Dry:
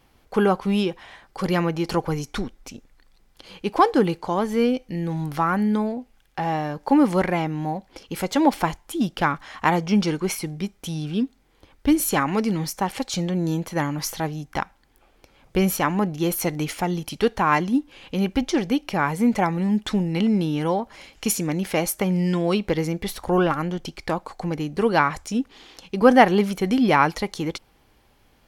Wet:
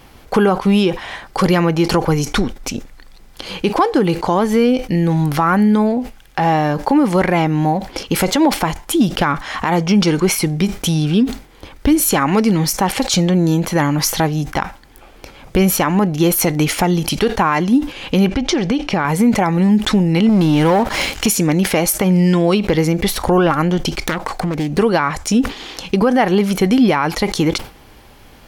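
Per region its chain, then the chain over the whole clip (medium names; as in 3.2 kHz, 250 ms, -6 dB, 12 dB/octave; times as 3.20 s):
18.27–19.05 s: low-pass 6.4 kHz + compression, threshold -25 dBFS
20.29–21.27 s: compression 2:1, threshold -34 dBFS + waveshaping leveller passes 3
24.01–24.78 s: self-modulated delay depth 0.43 ms + compression 4:1, threshold -31 dBFS
whole clip: compression 2:1, threshold -31 dBFS; loudness maximiser +19.5 dB; decay stretcher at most 150 dB/s; trim -4 dB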